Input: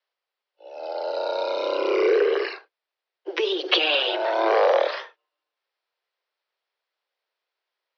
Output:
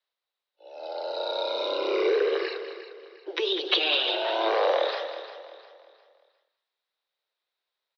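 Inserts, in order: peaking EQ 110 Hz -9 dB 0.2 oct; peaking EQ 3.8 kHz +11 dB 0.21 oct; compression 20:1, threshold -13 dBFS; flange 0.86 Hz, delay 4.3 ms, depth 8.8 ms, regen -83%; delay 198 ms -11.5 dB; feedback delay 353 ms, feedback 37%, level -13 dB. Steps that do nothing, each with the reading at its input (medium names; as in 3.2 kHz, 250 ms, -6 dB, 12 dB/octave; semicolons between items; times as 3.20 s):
peaking EQ 110 Hz: input has nothing below 290 Hz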